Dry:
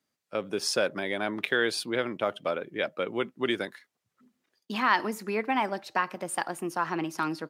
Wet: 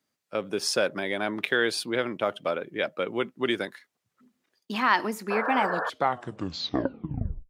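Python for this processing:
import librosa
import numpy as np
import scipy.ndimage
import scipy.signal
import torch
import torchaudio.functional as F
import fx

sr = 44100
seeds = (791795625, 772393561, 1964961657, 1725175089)

y = fx.tape_stop_end(x, sr, length_s=1.94)
y = fx.spec_paint(y, sr, seeds[0], shape='noise', start_s=5.3, length_s=0.6, low_hz=420.0, high_hz=1800.0, level_db=-31.0)
y = F.gain(torch.from_numpy(y), 1.5).numpy()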